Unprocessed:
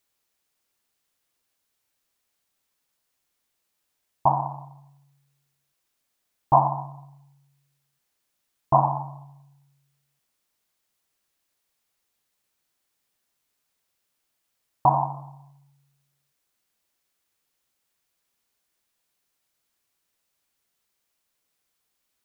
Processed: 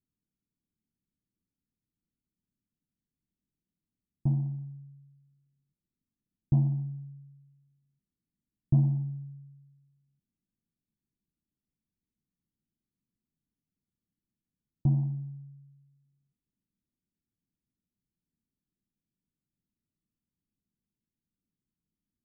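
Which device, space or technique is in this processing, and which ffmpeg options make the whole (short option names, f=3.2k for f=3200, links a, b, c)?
the neighbour's flat through the wall: -af "lowpass=f=280:w=0.5412,lowpass=f=280:w=1.3066,equalizer=f=190:t=o:w=0.89:g=5.5,volume=2dB"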